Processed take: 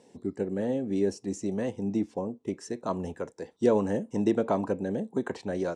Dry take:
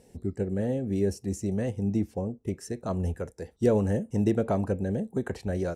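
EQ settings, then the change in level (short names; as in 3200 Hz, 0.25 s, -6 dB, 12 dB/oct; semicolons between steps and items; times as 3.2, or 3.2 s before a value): speaker cabinet 200–8300 Hz, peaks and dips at 290 Hz +4 dB, 1000 Hz +9 dB, 3500 Hz +4 dB; 0.0 dB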